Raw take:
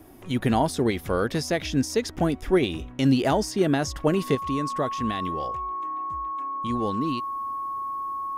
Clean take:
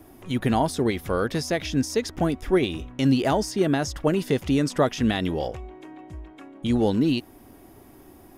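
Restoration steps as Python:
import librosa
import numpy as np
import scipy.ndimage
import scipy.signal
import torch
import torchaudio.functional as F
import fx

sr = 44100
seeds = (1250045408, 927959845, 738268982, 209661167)

y = fx.notch(x, sr, hz=1100.0, q=30.0)
y = fx.gain(y, sr, db=fx.steps((0.0, 0.0), (4.35, 6.5)))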